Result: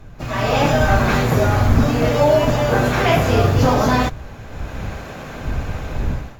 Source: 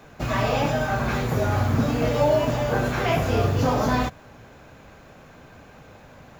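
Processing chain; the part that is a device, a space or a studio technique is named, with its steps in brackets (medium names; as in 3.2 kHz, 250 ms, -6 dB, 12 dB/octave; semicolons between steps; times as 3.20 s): smartphone video outdoors (wind noise 83 Hz -33 dBFS; level rider gain up to 17 dB; trim -2 dB; AAC 64 kbps 44.1 kHz)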